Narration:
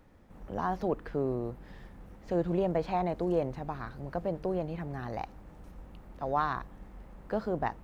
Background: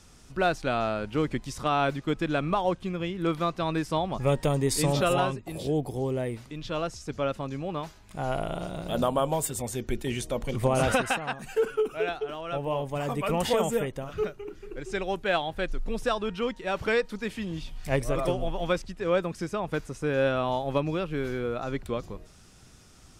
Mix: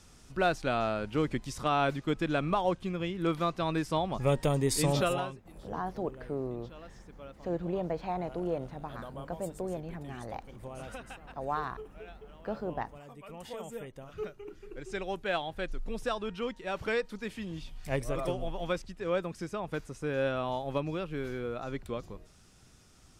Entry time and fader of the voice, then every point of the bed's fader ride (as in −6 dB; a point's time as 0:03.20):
5.15 s, −4.0 dB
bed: 0:05.01 −2.5 dB
0:05.57 −19.5 dB
0:13.32 −19.5 dB
0:14.48 −5.5 dB